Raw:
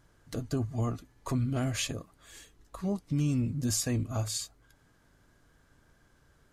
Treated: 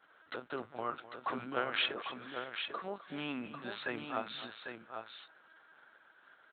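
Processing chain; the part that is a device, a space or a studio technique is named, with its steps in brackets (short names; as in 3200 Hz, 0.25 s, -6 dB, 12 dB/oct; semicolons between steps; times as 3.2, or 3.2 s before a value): 1.44–1.98 bell 360 Hz +12 dB 0.25 oct; talking toy (LPC vocoder at 8 kHz pitch kept; HPF 620 Hz 12 dB/oct; bell 1400 Hz +8 dB 0.36 oct); tapped delay 0.256/0.797 s -15/-7 dB; gain +4 dB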